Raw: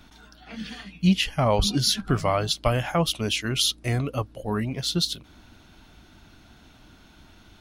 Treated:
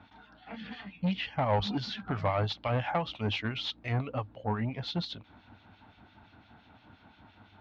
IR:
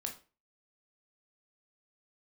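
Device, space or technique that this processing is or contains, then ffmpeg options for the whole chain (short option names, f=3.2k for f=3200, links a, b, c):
guitar amplifier with harmonic tremolo: -filter_complex "[0:a]acrossover=split=1900[a][b];[a]aeval=exprs='val(0)*(1-0.7/2+0.7/2*cos(2*PI*5.8*n/s))':c=same[c];[b]aeval=exprs='val(0)*(1-0.7/2-0.7/2*cos(2*PI*5.8*n/s))':c=same[d];[c][d]amix=inputs=2:normalize=0,asoftclip=type=tanh:threshold=-22dB,highpass=100,equalizer=f=100:t=q:w=4:g=7,equalizer=f=150:t=q:w=4:g=-5,equalizer=f=360:t=q:w=4:g=-6,equalizer=f=850:t=q:w=4:g=7,equalizer=f=3k:t=q:w=4:g=-3,lowpass=f=3.5k:w=0.5412,lowpass=f=3.5k:w=1.3066"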